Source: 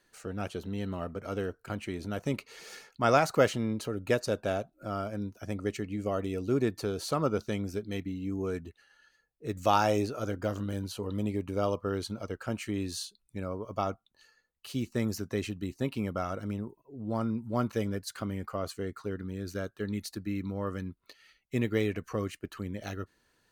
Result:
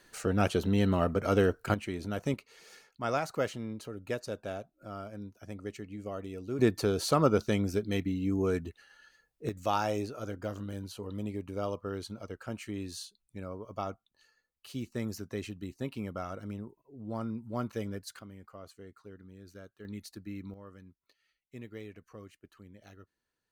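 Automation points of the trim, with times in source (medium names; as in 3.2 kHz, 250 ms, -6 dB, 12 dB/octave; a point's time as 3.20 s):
+8.5 dB
from 1.74 s 0 dB
from 2.34 s -7.5 dB
from 6.59 s +4 dB
from 9.49 s -5 dB
from 18.19 s -14 dB
from 19.85 s -7.5 dB
from 20.54 s -16 dB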